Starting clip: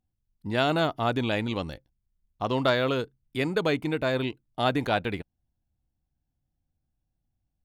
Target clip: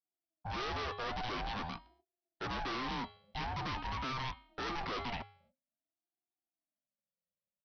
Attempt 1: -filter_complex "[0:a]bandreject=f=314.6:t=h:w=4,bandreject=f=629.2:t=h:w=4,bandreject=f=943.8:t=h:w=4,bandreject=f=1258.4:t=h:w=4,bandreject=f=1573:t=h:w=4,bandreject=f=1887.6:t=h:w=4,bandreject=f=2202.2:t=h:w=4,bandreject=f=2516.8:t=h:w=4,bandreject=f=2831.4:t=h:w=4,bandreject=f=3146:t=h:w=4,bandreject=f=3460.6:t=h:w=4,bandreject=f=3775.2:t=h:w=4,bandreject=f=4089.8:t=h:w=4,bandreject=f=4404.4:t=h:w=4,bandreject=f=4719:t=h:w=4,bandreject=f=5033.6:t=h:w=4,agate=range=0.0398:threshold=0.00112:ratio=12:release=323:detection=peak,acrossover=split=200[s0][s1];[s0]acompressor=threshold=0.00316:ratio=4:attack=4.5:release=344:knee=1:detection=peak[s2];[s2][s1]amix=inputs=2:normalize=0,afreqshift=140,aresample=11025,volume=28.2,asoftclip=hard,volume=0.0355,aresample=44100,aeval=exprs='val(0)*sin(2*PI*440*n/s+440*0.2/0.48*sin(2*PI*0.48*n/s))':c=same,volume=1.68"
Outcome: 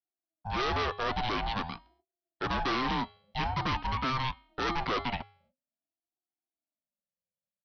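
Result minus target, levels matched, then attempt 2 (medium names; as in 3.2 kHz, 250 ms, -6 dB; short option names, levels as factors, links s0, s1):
overload inside the chain: distortion -4 dB
-filter_complex "[0:a]bandreject=f=314.6:t=h:w=4,bandreject=f=629.2:t=h:w=4,bandreject=f=943.8:t=h:w=4,bandreject=f=1258.4:t=h:w=4,bandreject=f=1573:t=h:w=4,bandreject=f=1887.6:t=h:w=4,bandreject=f=2202.2:t=h:w=4,bandreject=f=2516.8:t=h:w=4,bandreject=f=2831.4:t=h:w=4,bandreject=f=3146:t=h:w=4,bandreject=f=3460.6:t=h:w=4,bandreject=f=3775.2:t=h:w=4,bandreject=f=4089.8:t=h:w=4,bandreject=f=4404.4:t=h:w=4,bandreject=f=4719:t=h:w=4,bandreject=f=5033.6:t=h:w=4,agate=range=0.0398:threshold=0.00112:ratio=12:release=323:detection=peak,acrossover=split=200[s0][s1];[s0]acompressor=threshold=0.00316:ratio=4:attack=4.5:release=344:knee=1:detection=peak[s2];[s2][s1]amix=inputs=2:normalize=0,afreqshift=140,aresample=11025,volume=84.1,asoftclip=hard,volume=0.0119,aresample=44100,aeval=exprs='val(0)*sin(2*PI*440*n/s+440*0.2/0.48*sin(2*PI*0.48*n/s))':c=same,volume=1.68"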